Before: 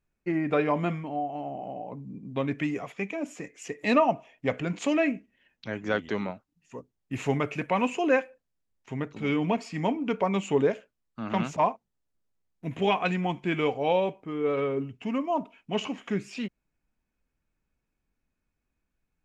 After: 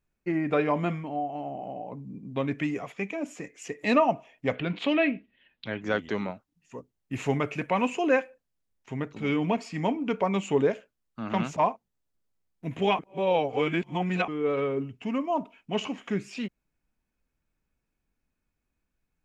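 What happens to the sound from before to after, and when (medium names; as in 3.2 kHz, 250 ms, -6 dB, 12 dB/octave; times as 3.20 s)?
4.55–5.82 s: resonant high shelf 5 kHz -11 dB, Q 3
12.99–14.28 s: reverse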